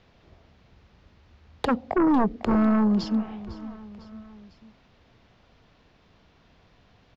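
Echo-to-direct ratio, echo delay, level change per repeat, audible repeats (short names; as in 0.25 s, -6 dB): -16.0 dB, 0.501 s, -4.5 dB, 3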